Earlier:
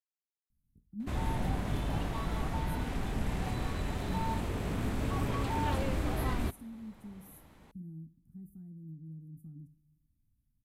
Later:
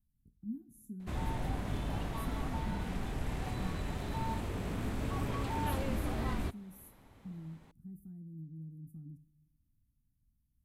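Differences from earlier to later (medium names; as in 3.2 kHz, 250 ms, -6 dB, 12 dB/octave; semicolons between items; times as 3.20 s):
speech: entry -0.50 s; background -3.0 dB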